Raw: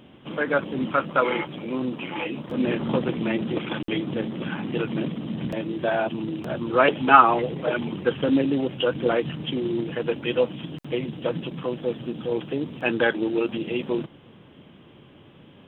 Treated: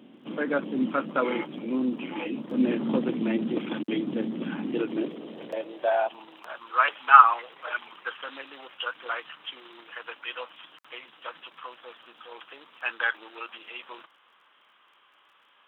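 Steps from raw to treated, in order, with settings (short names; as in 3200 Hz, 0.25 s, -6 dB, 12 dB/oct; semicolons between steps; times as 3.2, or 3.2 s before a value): high-pass sweep 240 Hz -> 1200 Hz, 4.57–6.65; crackle 23/s -51 dBFS; gain -6 dB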